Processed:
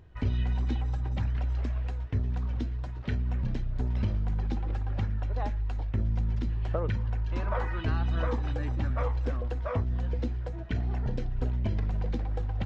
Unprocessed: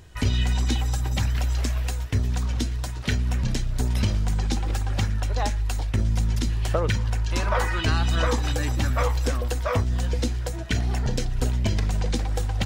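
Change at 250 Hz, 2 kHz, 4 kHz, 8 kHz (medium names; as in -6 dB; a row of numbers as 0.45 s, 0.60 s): -6.0 dB, -11.5 dB, -17.5 dB, under -25 dB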